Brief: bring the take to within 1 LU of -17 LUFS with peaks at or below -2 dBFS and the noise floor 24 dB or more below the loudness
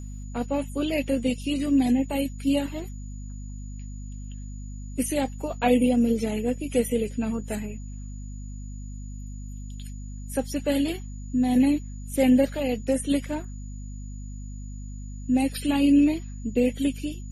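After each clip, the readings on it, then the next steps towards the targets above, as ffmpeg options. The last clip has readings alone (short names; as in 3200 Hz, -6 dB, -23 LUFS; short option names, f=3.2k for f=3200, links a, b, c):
hum 50 Hz; harmonics up to 250 Hz; hum level -33 dBFS; steady tone 6900 Hz; tone level -52 dBFS; loudness -25.0 LUFS; peak -10.0 dBFS; loudness target -17.0 LUFS
-> -af "bandreject=f=50:t=h:w=6,bandreject=f=100:t=h:w=6,bandreject=f=150:t=h:w=6,bandreject=f=200:t=h:w=6,bandreject=f=250:t=h:w=6"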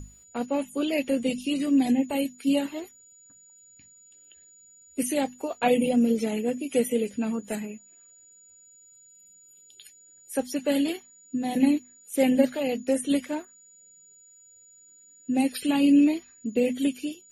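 hum none; steady tone 6900 Hz; tone level -52 dBFS
-> -af "bandreject=f=6.9k:w=30"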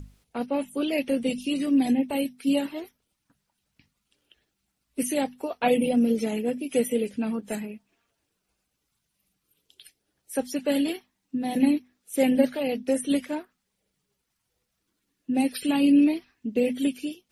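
steady tone none; loudness -26.0 LUFS; peak -8.0 dBFS; loudness target -17.0 LUFS
-> -af "volume=9dB,alimiter=limit=-2dB:level=0:latency=1"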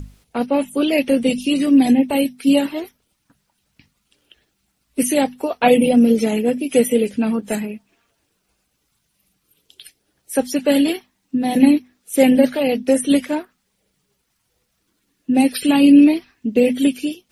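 loudness -17.0 LUFS; peak -2.0 dBFS; noise floor -70 dBFS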